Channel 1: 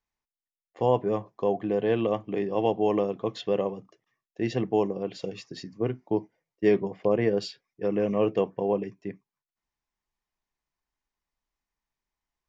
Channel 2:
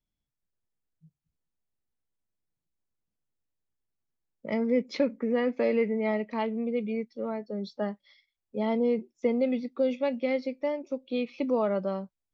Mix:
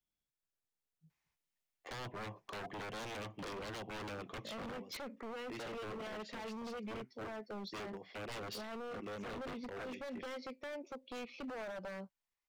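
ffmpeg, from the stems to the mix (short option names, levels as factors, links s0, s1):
-filter_complex "[0:a]equalizer=f=2300:t=o:w=1:g=5.5,adelay=1100,volume=1.12[s0];[1:a]alimiter=level_in=1.33:limit=0.0631:level=0:latency=1:release=93,volume=0.75,volume=0.75,asplit=2[s1][s2];[s2]apad=whole_len=599317[s3];[s0][s3]sidechaincompress=threshold=0.00398:ratio=6:attack=44:release=917[s4];[s4][s1]amix=inputs=2:normalize=0,lowshelf=f=330:g=-9,acrossover=split=150[s5][s6];[s6]acompressor=threshold=0.0178:ratio=4[s7];[s5][s7]amix=inputs=2:normalize=0,aeval=exprs='0.0112*(abs(mod(val(0)/0.0112+3,4)-2)-1)':c=same"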